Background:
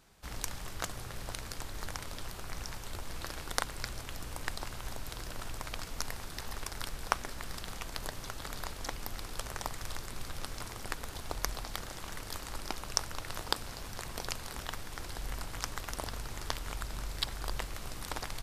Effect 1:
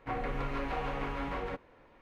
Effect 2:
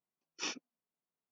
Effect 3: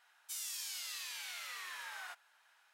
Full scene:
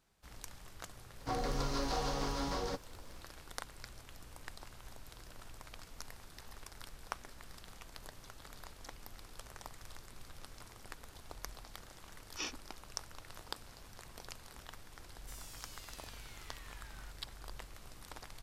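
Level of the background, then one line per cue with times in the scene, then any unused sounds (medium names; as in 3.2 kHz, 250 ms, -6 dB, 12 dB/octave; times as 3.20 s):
background -11.5 dB
1.20 s: add 1 -0.5 dB + resonant high shelf 3.5 kHz +14 dB, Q 3
11.97 s: add 2 -2 dB
14.98 s: add 3 -11.5 dB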